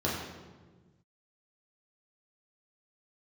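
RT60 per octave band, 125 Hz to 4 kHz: 2.1 s, 1.8 s, 1.6 s, 1.2 s, 1.0 s, 0.90 s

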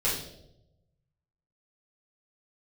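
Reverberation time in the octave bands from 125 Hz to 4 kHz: 1.6 s, 1.0 s, 1.0 s, 0.70 s, 0.55 s, 0.65 s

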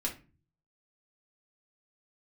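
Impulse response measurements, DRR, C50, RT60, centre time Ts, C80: -2.0 dB, 11.0 dB, 0.35 s, 16 ms, 18.5 dB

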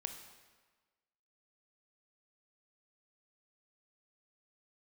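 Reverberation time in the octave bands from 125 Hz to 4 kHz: 1.2 s, 1.3 s, 1.4 s, 1.4 s, 1.3 s, 1.1 s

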